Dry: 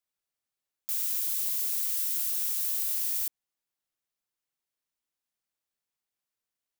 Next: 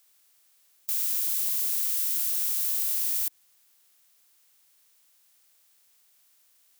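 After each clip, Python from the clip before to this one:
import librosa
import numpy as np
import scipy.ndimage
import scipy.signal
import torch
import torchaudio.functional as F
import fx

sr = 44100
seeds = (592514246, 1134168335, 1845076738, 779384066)

y = fx.bin_compress(x, sr, power=0.6)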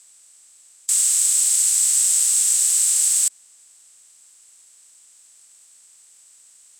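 y = fx.lowpass_res(x, sr, hz=8000.0, q=8.6)
y = y * librosa.db_to_amplitude(7.5)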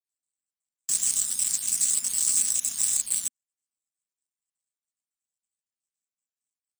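y = fx.spec_dropout(x, sr, seeds[0], share_pct=38)
y = fx.power_curve(y, sr, exponent=2.0)
y = fx.low_shelf_res(y, sr, hz=310.0, db=7.5, q=3.0)
y = y * librosa.db_to_amplitude(3.0)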